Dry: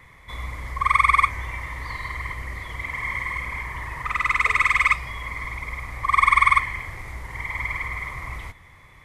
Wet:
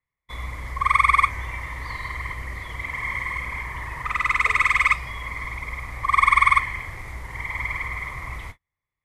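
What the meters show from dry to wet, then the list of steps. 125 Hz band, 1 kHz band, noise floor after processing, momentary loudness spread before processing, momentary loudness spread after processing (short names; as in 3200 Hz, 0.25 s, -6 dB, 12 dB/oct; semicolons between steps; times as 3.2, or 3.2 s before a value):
0.0 dB, 0.0 dB, under -85 dBFS, 17 LU, 17 LU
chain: gate -38 dBFS, range -38 dB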